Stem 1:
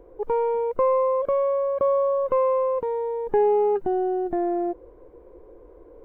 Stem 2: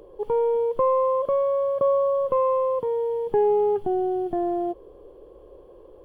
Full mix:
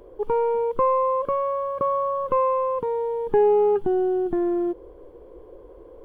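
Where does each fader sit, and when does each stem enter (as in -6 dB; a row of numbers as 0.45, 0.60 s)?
+1.0, -3.0 dB; 0.00, 0.00 s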